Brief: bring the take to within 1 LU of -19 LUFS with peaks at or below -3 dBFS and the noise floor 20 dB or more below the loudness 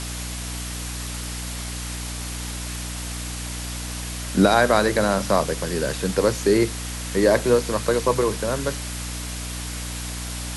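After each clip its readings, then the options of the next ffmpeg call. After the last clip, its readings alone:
hum 60 Hz; harmonics up to 300 Hz; hum level -30 dBFS; noise floor -31 dBFS; noise floor target -44 dBFS; loudness -24.0 LUFS; peak -3.5 dBFS; loudness target -19.0 LUFS
-> -af "bandreject=f=60:t=h:w=6,bandreject=f=120:t=h:w=6,bandreject=f=180:t=h:w=6,bandreject=f=240:t=h:w=6,bandreject=f=300:t=h:w=6"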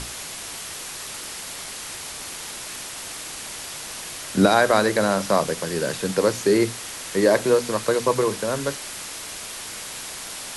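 hum none; noise floor -35 dBFS; noise floor target -44 dBFS
-> -af "afftdn=nr=9:nf=-35"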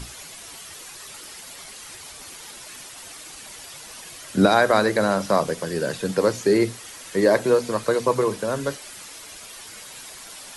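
noise floor -41 dBFS; noise floor target -42 dBFS
-> -af "afftdn=nr=6:nf=-41"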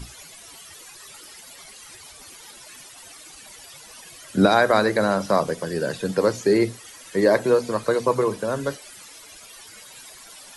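noise floor -45 dBFS; loudness -21.5 LUFS; peak -3.5 dBFS; loudness target -19.0 LUFS
-> -af "volume=2.5dB,alimiter=limit=-3dB:level=0:latency=1"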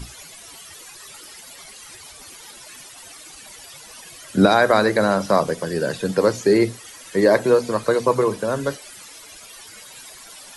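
loudness -19.0 LUFS; peak -3.0 dBFS; noise floor -42 dBFS

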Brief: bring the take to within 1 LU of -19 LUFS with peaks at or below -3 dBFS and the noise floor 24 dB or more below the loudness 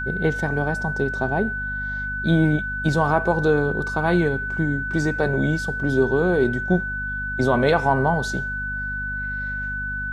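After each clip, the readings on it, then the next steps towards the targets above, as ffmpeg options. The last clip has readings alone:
hum 50 Hz; harmonics up to 250 Hz; hum level -31 dBFS; steady tone 1500 Hz; tone level -26 dBFS; loudness -22.5 LUFS; peak -5.5 dBFS; loudness target -19.0 LUFS
-> -af "bandreject=f=50:t=h:w=6,bandreject=f=100:t=h:w=6,bandreject=f=150:t=h:w=6,bandreject=f=200:t=h:w=6,bandreject=f=250:t=h:w=6"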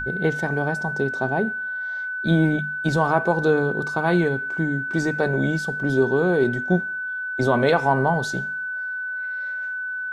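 hum none; steady tone 1500 Hz; tone level -26 dBFS
-> -af "bandreject=f=1.5k:w=30"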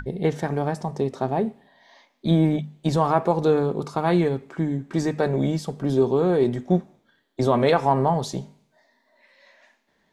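steady tone none; loudness -23.0 LUFS; peak -5.5 dBFS; loudness target -19.0 LUFS
-> -af "volume=4dB,alimiter=limit=-3dB:level=0:latency=1"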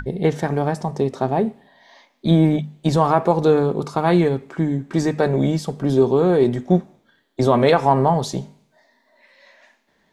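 loudness -19.0 LUFS; peak -3.0 dBFS; noise floor -64 dBFS

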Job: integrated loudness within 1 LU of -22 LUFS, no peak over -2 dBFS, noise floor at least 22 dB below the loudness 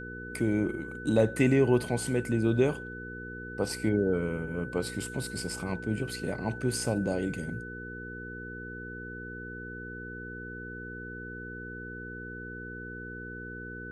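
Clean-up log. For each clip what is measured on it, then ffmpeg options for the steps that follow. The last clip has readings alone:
hum 60 Hz; harmonics up to 480 Hz; hum level -41 dBFS; steady tone 1500 Hz; tone level -41 dBFS; loudness -32.0 LUFS; peak -10.5 dBFS; loudness target -22.0 LUFS
-> -af "bandreject=f=60:t=h:w=4,bandreject=f=120:t=h:w=4,bandreject=f=180:t=h:w=4,bandreject=f=240:t=h:w=4,bandreject=f=300:t=h:w=4,bandreject=f=360:t=h:w=4,bandreject=f=420:t=h:w=4,bandreject=f=480:t=h:w=4"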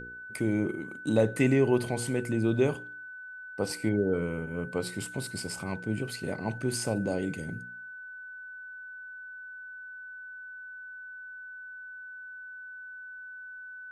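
hum none; steady tone 1500 Hz; tone level -41 dBFS
-> -af "bandreject=f=1.5k:w=30"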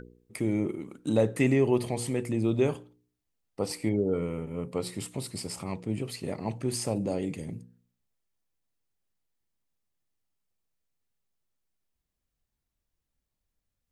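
steady tone none; loudness -30.0 LUFS; peak -11.0 dBFS; loudness target -22.0 LUFS
-> -af "volume=8dB"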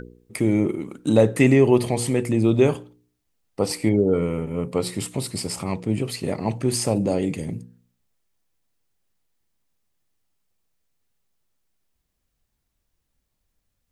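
loudness -22.0 LUFS; peak -3.0 dBFS; noise floor -76 dBFS

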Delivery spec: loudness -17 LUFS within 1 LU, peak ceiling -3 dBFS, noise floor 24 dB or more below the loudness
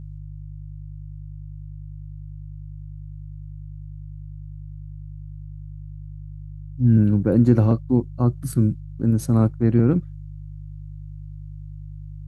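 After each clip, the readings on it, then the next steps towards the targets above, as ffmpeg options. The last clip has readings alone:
hum 50 Hz; harmonics up to 150 Hz; hum level -33 dBFS; loudness -20.0 LUFS; peak -4.0 dBFS; loudness target -17.0 LUFS
-> -af "bandreject=f=50:t=h:w=4,bandreject=f=100:t=h:w=4,bandreject=f=150:t=h:w=4"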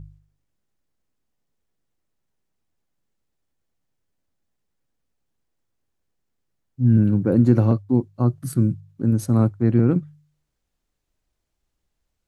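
hum none; loudness -20.0 LUFS; peak -4.0 dBFS; loudness target -17.0 LUFS
-> -af "volume=3dB,alimiter=limit=-3dB:level=0:latency=1"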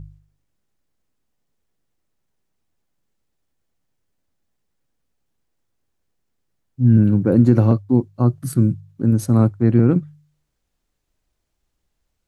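loudness -17.0 LUFS; peak -3.0 dBFS; noise floor -74 dBFS

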